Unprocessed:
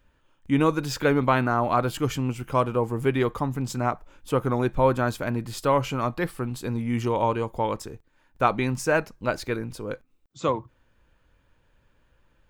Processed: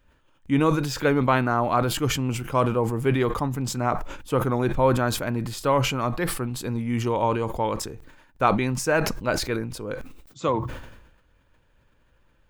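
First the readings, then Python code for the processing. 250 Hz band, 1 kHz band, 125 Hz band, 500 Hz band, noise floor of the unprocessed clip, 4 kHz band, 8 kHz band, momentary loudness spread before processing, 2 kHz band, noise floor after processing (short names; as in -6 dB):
+1.0 dB, +0.5 dB, +2.0 dB, +0.5 dB, -65 dBFS, +5.5 dB, +6.0 dB, 9 LU, +1.0 dB, -62 dBFS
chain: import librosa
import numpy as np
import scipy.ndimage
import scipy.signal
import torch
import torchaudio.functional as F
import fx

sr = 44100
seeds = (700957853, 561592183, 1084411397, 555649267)

y = fx.sustainer(x, sr, db_per_s=57.0)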